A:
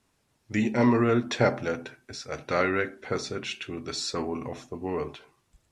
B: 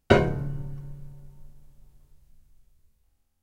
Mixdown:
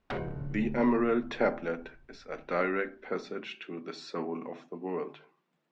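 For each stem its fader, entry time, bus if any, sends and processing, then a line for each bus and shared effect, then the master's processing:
−3.5 dB, 0.00 s, no send, elliptic high-pass filter 160 Hz
−3.5 dB, 0.00 s, no send, downward compressor 2.5 to 1, threshold −29 dBFS, peak gain reduction 12 dB; wave folding −24 dBFS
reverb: not used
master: low-pass filter 2,800 Hz 12 dB per octave; mains-hum notches 50/100/150 Hz

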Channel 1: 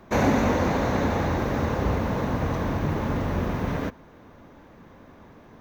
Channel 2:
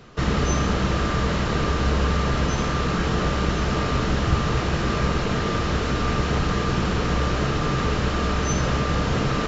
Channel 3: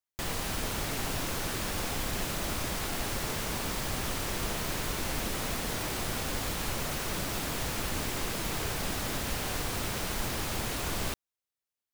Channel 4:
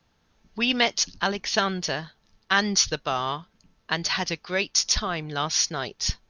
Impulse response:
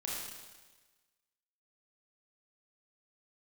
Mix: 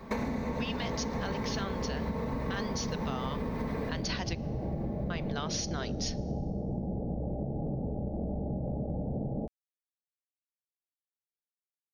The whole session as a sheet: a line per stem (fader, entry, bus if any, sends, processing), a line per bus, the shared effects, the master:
−2.5 dB, 0.00 s, send −4 dB, comb filter 4.5 ms, depth 54%; downward compressor, threshold −23 dBFS, peak gain reduction 8 dB; EQ curve with evenly spaced ripples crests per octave 0.94, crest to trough 7 dB
−0.5 dB, 0.00 s, send −22.5 dB, Chebyshev low-pass with heavy ripple 840 Hz, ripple 6 dB
muted
−0.5 dB, 0.00 s, muted 0:04.39–0:05.10, send −23 dB, brickwall limiter −14.5 dBFS, peak gain reduction 8.5 dB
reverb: on, RT60 1.3 s, pre-delay 26 ms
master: downward compressor 10 to 1, threshold −30 dBFS, peak gain reduction 15 dB

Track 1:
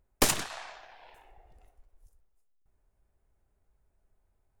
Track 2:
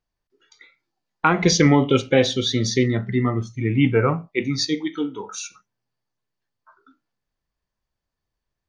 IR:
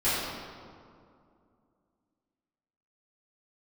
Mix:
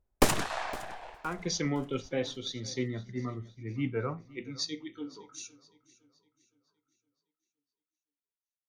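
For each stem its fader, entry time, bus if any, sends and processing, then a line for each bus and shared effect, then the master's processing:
+2.5 dB, 0.00 s, no send, echo send −19.5 dB, noise gate −54 dBFS, range −8 dB; high-shelf EQ 2,100 Hz −9.5 dB; automatic gain control gain up to 9.5 dB; automatic ducking −7 dB, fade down 0.30 s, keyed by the second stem
−19.5 dB, 0.00 s, no send, echo send −20.5 dB, notch filter 840 Hz, Q 20; automatic gain control gain up to 7.5 dB; multiband upward and downward expander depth 70%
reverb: not used
echo: repeating echo 513 ms, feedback 41%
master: no processing

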